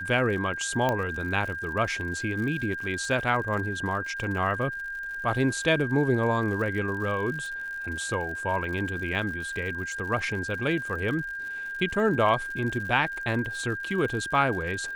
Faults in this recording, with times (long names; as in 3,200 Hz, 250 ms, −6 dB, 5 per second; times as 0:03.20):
surface crackle 81 per second −36 dBFS
whistle 1,600 Hz −32 dBFS
0:00.89: click −13 dBFS